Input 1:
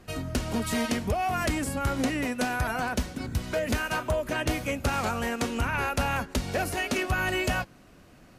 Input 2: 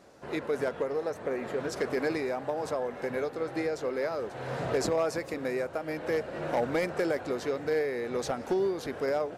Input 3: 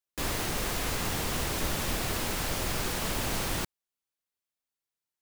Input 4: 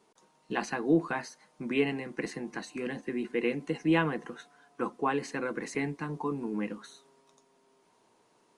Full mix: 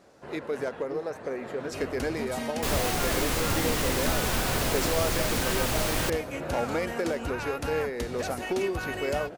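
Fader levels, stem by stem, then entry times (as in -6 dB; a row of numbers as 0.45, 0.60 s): -7.0, -1.0, +3.0, -16.5 dB; 1.65, 0.00, 2.45, 0.00 s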